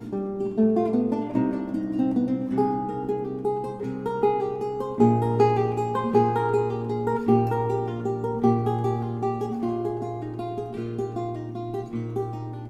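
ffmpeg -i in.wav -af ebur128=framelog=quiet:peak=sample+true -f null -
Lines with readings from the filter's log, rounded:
Integrated loudness:
  I:         -25.5 LUFS
  Threshold: -35.5 LUFS
Loudness range:
  LRA:         6.1 LU
  Threshold: -45.2 LUFS
  LRA low:   -29.2 LUFS
  LRA high:  -23.1 LUFS
Sample peak:
  Peak:       -6.7 dBFS
True peak:
  Peak:       -6.7 dBFS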